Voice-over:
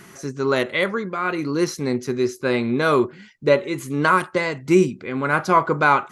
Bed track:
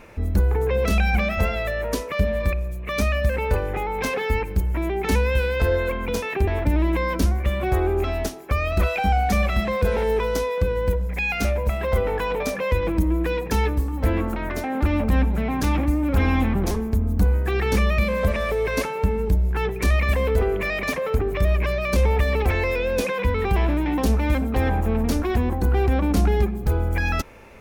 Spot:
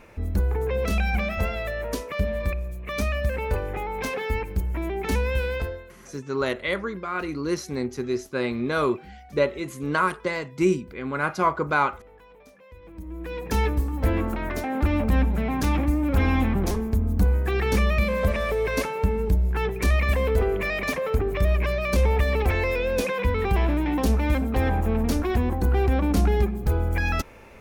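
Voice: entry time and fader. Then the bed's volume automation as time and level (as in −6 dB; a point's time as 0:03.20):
5.90 s, −5.5 dB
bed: 0:05.56 −4 dB
0:05.94 −26.5 dB
0:12.74 −26.5 dB
0:13.57 −1.5 dB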